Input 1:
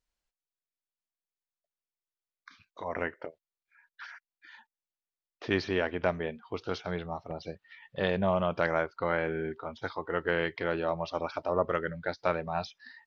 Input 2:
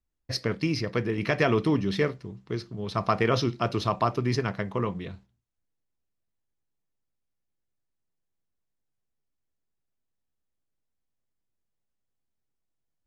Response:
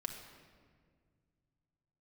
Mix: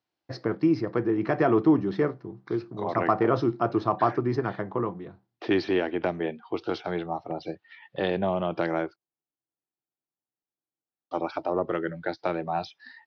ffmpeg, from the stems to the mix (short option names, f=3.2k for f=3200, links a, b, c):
-filter_complex "[0:a]acrossover=split=420|3000[a][b][c];[b]acompressor=threshold=-32dB:ratio=6[d];[a][d][c]amix=inputs=3:normalize=0,volume=2.5dB,asplit=3[e][f][g];[e]atrim=end=8.96,asetpts=PTS-STARTPTS,afade=t=out:st=8.956:d=0.004:c=hsin[h];[f]atrim=start=8.96:end=11.11,asetpts=PTS-STARTPTS,volume=0[i];[g]atrim=start=11.11,asetpts=PTS-STARTPTS,afade=t=in:d=0.004:c=hsin[j];[h][i][j]concat=n=3:v=0:a=1[k];[1:a]acontrast=63,highshelf=f=1.9k:t=q:w=1.5:g=-9,volume=-8dB,afade=t=out:st=4.71:d=0.6:silence=0.446684[l];[k][l]amix=inputs=2:normalize=0,highpass=f=110:w=0.5412,highpass=f=110:w=1.3066,equalizer=f=200:t=q:w=4:g=-3,equalizer=f=330:t=q:w=4:g=10,equalizer=f=770:t=q:w=4:g=7,lowpass=f=5.2k:w=0.5412,lowpass=f=5.2k:w=1.3066"